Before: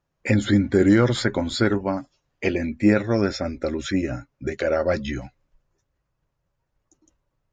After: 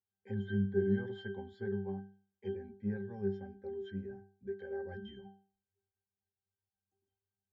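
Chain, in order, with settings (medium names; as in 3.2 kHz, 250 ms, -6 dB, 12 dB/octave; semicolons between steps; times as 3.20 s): bass shelf 190 Hz -9 dB; pitch-class resonator G, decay 0.43 s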